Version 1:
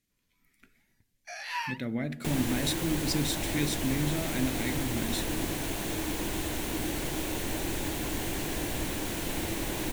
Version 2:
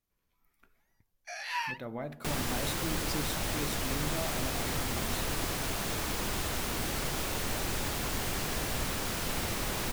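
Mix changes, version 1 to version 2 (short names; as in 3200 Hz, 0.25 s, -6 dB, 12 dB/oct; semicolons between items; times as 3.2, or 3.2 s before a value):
speech: add ten-band EQ 125 Hz -6 dB, 250 Hz -10 dB, 1000 Hz +10 dB, 2000 Hz -11 dB, 4000 Hz -5 dB, 8000 Hz -9 dB; second sound: add thirty-one-band EQ 315 Hz -11 dB, 1250 Hz +9 dB, 5000 Hz +6 dB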